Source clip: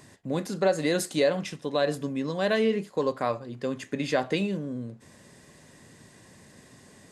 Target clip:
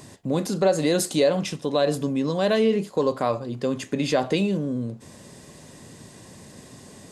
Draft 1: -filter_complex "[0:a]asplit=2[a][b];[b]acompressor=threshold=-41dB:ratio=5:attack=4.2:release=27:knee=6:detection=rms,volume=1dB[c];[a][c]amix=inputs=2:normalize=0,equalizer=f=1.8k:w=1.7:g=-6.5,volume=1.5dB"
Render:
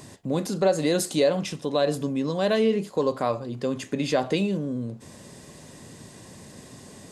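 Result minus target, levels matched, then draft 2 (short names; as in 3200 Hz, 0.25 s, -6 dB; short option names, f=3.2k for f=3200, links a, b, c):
compressor: peak gain reduction +7 dB
-filter_complex "[0:a]asplit=2[a][b];[b]acompressor=threshold=-32dB:ratio=5:attack=4.2:release=27:knee=6:detection=rms,volume=1dB[c];[a][c]amix=inputs=2:normalize=0,equalizer=f=1.8k:w=1.7:g=-6.5,volume=1.5dB"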